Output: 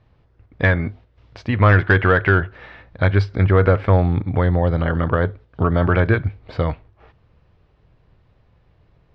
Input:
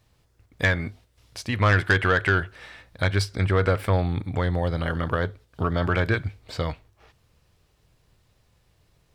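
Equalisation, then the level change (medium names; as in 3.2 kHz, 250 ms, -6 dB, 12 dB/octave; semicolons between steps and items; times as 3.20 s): low-pass 6.8 kHz; distance through air 170 m; treble shelf 3.1 kHz -11.5 dB; +7.5 dB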